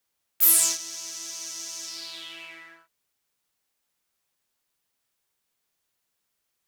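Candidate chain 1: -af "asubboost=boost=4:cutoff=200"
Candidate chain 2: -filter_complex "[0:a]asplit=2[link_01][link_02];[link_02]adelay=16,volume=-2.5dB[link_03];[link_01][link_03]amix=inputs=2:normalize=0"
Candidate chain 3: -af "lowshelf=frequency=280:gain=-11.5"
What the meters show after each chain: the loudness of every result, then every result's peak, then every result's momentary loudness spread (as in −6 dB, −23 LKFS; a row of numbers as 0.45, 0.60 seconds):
−22.5, −21.0, −22.5 LKFS; −4.5, −4.0, −5.0 dBFS; 21, 22, 21 LU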